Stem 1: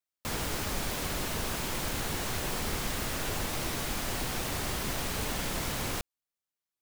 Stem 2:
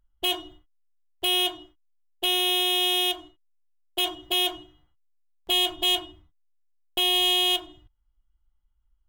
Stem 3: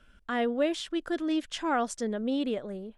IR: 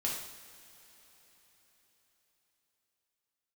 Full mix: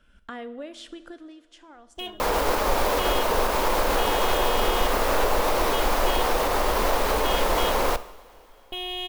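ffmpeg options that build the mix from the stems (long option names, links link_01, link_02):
-filter_complex "[0:a]equalizer=frequency=125:width_type=o:width=1:gain=-12,equalizer=frequency=500:width_type=o:width=1:gain=11,equalizer=frequency=1000:width_type=o:width=1:gain=9,equalizer=frequency=8000:width_type=o:width=1:gain=-5,adelay=1950,volume=1.5dB,asplit=2[link_01][link_02];[link_02]volume=-12dB[link_03];[1:a]bass=frequency=250:gain=6,treble=frequency=4000:gain=-12,adelay=1750,volume=-8dB,asplit=2[link_04][link_05];[link_05]volume=-19dB[link_06];[2:a]acompressor=threshold=-41dB:ratio=4,volume=-5.5dB,afade=type=out:start_time=0.9:duration=0.54:silence=0.251189,asplit=2[link_07][link_08];[link_08]volume=-5.5dB[link_09];[link_01][link_07]amix=inputs=2:normalize=0,dynaudnorm=framelen=110:gausssize=3:maxgain=7.5dB,alimiter=limit=-15dB:level=0:latency=1:release=203,volume=0dB[link_10];[3:a]atrim=start_sample=2205[link_11];[link_03][link_06][link_09]amix=inputs=3:normalize=0[link_12];[link_12][link_11]afir=irnorm=-1:irlink=0[link_13];[link_04][link_10][link_13]amix=inputs=3:normalize=0,asubboost=boost=2.5:cutoff=57"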